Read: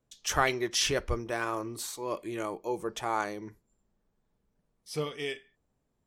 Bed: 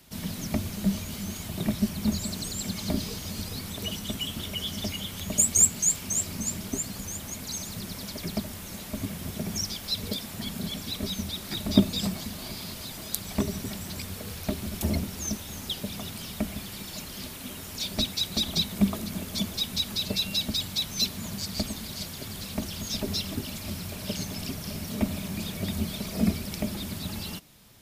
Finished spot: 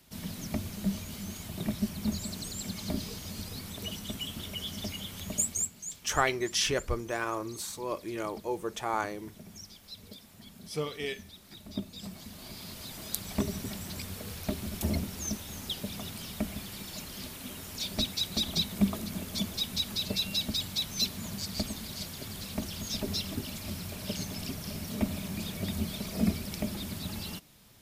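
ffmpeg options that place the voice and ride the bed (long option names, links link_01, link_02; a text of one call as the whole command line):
ffmpeg -i stem1.wav -i stem2.wav -filter_complex "[0:a]adelay=5800,volume=-0.5dB[link_01];[1:a]volume=8.5dB,afade=type=out:start_time=5.3:duration=0.41:silence=0.266073,afade=type=in:start_time=11.91:duration=1.18:silence=0.211349[link_02];[link_01][link_02]amix=inputs=2:normalize=0" out.wav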